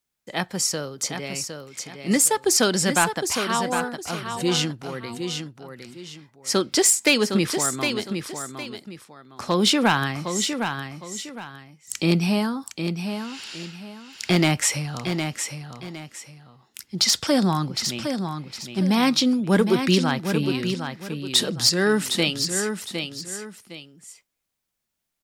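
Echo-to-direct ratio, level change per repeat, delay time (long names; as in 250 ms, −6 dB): −6.5 dB, −10.5 dB, 760 ms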